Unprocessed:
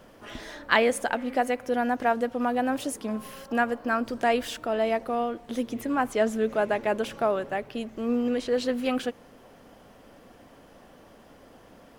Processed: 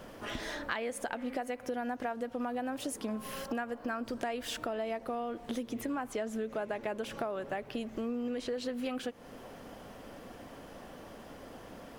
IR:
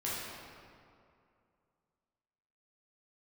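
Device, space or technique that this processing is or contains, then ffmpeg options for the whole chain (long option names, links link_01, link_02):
serial compression, leveller first: -af "acompressor=threshold=-27dB:ratio=2,acompressor=threshold=-38dB:ratio=4,volume=3.5dB"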